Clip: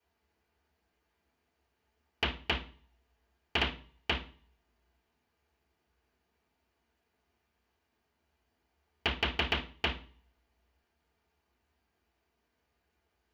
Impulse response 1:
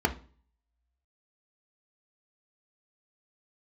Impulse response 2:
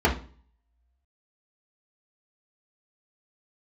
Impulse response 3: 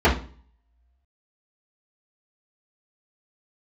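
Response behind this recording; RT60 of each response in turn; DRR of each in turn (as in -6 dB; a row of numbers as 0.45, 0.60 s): 3; 0.40, 0.40, 0.40 s; 5.0, -3.5, -9.5 dB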